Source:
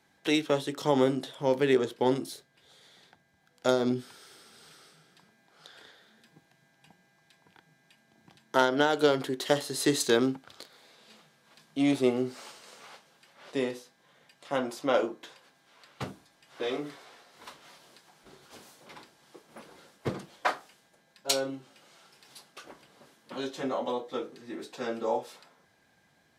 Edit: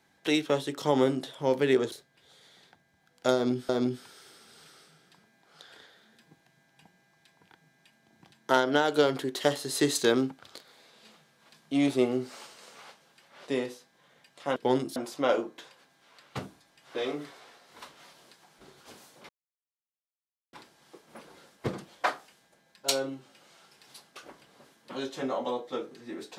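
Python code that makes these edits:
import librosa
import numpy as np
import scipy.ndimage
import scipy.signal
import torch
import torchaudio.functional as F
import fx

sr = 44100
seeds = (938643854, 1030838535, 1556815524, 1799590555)

y = fx.edit(x, sr, fx.move(start_s=1.92, length_s=0.4, to_s=14.61),
    fx.repeat(start_s=3.74, length_s=0.35, count=2),
    fx.insert_silence(at_s=18.94, length_s=1.24), tone=tone)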